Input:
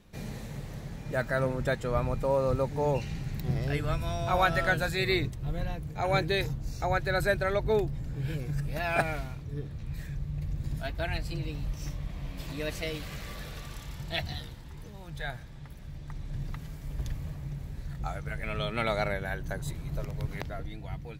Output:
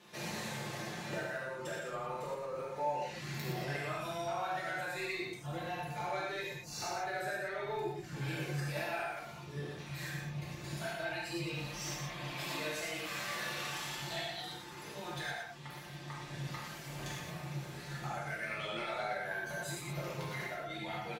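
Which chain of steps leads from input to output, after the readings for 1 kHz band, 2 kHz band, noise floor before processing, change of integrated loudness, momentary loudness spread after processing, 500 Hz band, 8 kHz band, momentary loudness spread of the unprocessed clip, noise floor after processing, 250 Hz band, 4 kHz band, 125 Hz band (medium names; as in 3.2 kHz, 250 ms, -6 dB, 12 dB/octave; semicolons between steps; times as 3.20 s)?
-5.0 dB, -5.0 dB, -44 dBFS, -7.0 dB, 6 LU, -9.0 dB, +3.0 dB, 14 LU, -48 dBFS, -8.0 dB, -3.0 dB, -10.5 dB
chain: frequency weighting A; reverb removal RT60 0.63 s; dynamic bell 3.7 kHz, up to -5 dB, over -49 dBFS, Q 1; comb 5.7 ms, depth 56%; compression 8:1, threshold -43 dBFS, peak gain reduction 20.5 dB; saturation -37.5 dBFS, distortion -18 dB; flange 0.25 Hz, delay 5.8 ms, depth 7.9 ms, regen -72%; delay 120 ms -5.5 dB; gated-style reverb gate 130 ms flat, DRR -5.5 dB; trim +6.5 dB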